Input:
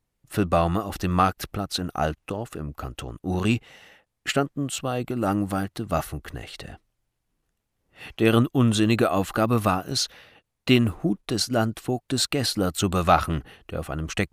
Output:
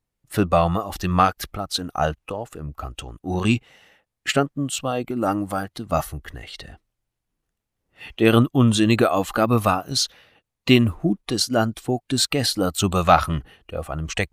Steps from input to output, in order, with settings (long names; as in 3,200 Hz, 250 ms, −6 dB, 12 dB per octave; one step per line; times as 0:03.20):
noise reduction from a noise print of the clip's start 7 dB
level +3.5 dB